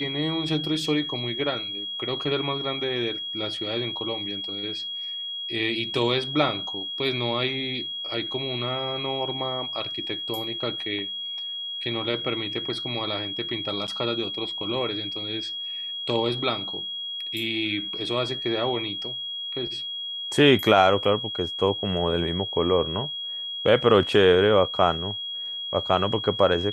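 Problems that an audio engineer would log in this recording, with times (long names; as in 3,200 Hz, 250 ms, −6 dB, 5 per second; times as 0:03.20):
whistle 3,300 Hz −30 dBFS
0:13.87–0:13.88: drop-out 8.2 ms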